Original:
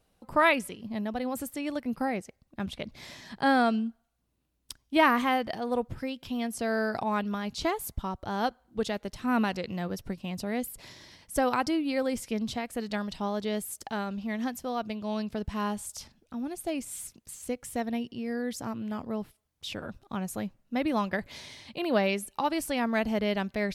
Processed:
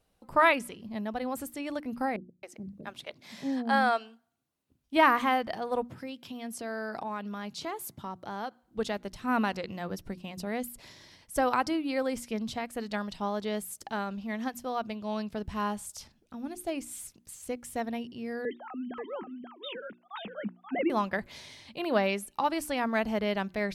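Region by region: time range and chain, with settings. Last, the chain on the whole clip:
2.16–4.84 s: high-pass 120 Hz + hum notches 50/100/150/200 Hz + bands offset in time lows, highs 270 ms, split 410 Hz
5.86–8.63 s: high-pass 120 Hz 24 dB/octave + compression 4:1, threshold -32 dBFS
18.45–20.90 s: formants replaced by sine waves + delay 532 ms -5.5 dB
whole clip: hum notches 60/120/180/240/300/360 Hz; dynamic bell 1.1 kHz, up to +4 dB, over -40 dBFS, Q 0.8; trim -2.5 dB

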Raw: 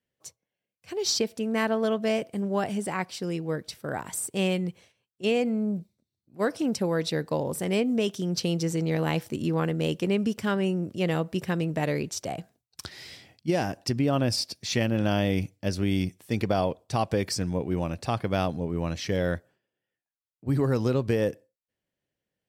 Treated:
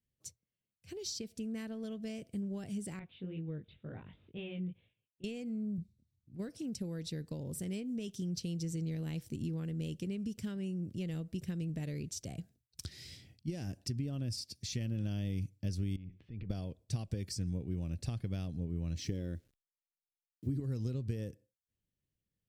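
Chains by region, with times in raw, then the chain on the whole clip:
2.99–5.24 s: rippled Chebyshev low-pass 3.7 kHz, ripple 3 dB + chorus 2.1 Hz, delay 18 ms, depth 3.6 ms
5.78–6.49 s: bass shelf 140 Hz +9.5 dB + decimation joined by straight lines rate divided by 2×
15.96–16.50 s: low-pass 3 kHz 24 dB/octave + compression 8:1, threshold -37 dBFS + transient shaper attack -6 dB, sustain +4 dB
18.97–20.60 s: peaking EQ 320 Hz +9 dB 1 oct + word length cut 10-bit, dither none
whole clip: dynamic bell 7.2 kHz, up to +4 dB, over -49 dBFS, Q 0.82; compression 4:1, threshold -32 dBFS; amplifier tone stack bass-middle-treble 10-0-1; trim +13.5 dB

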